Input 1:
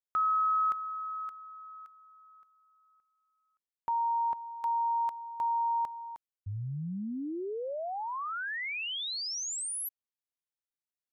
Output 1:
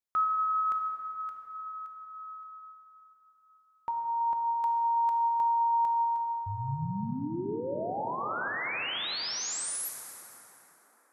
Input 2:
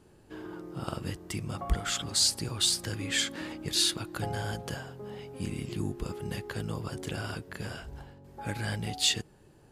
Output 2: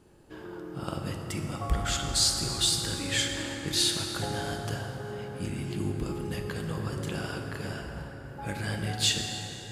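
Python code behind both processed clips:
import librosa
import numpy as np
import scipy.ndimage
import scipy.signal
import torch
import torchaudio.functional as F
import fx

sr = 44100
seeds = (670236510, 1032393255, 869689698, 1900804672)

y = fx.rev_plate(x, sr, seeds[0], rt60_s=5.0, hf_ratio=0.45, predelay_ms=0, drr_db=2.0)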